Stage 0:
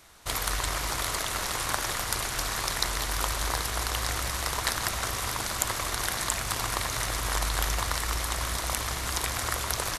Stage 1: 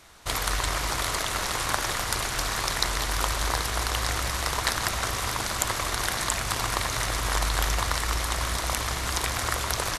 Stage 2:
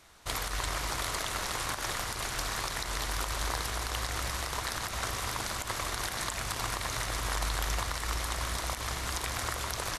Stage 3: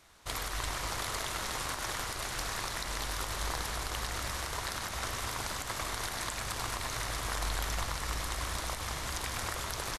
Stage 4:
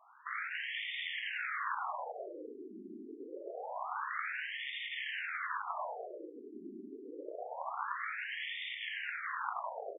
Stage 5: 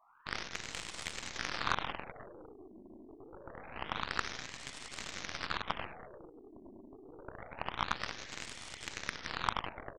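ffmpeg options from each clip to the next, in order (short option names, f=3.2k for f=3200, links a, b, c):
-af "highshelf=f=11k:g=-7.5,volume=3dB"
-af "alimiter=limit=-12.5dB:level=0:latency=1:release=88,volume=-5.5dB"
-filter_complex "[0:a]asplit=9[a][b][c][d][e][f][g][h][i];[b]adelay=101,afreqshift=-49,volume=-8.5dB[j];[c]adelay=202,afreqshift=-98,volume=-12.5dB[k];[d]adelay=303,afreqshift=-147,volume=-16.5dB[l];[e]adelay=404,afreqshift=-196,volume=-20.5dB[m];[f]adelay=505,afreqshift=-245,volume=-24.6dB[n];[g]adelay=606,afreqshift=-294,volume=-28.6dB[o];[h]adelay=707,afreqshift=-343,volume=-32.6dB[p];[i]adelay=808,afreqshift=-392,volume=-36.6dB[q];[a][j][k][l][m][n][o][p][q]amix=inputs=9:normalize=0,volume=-3dB"
-af "alimiter=level_in=2dB:limit=-24dB:level=0:latency=1:release=11,volume=-2dB,afftfilt=real='re*between(b*sr/1024,290*pow(2600/290,0.5+0.5*sin(2*PI*0.26*pts/sr))/1.41,290*pow(2600/290,0.5+0.5*sin(2*PI*0.26*pts/sr))*1.41)':imag='im*between(b*sr/1024,290*pow(2600/290,0.5+0.5*sin(2*PI*0.26*pts/sr))/1.41,290*pow(2600/290,0.5+0.5*sin(2*PI*0.26*pts/sr))*1.41)':win_size=1024:overlap=0.75,volume=5.5dB"
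-af "bandreject=f=2.7k:w=18,aeval=exprs='0.0841*(cos(1*acos(clip(val(0)/0.0841,-1,1)))-cos(1*PI/2))+0.015*(cos(3*acos(clip(val(0)/0.0841,-1,1)))-cos(3*PI/2))+0.00841*(cos(4*acos(clip(val(0)/0.0841,-1,1)))-cos(4*PI/2))+0.00188*(cos(5*acos(clip(val(0)/0.0841,-1,1)))-cos(5*PI/2))+0.00944*(cos(7*acos(clip(val(0)/0.0841,-1,1)))-cos(7*PI/2))':c=same,volume=9.5dB"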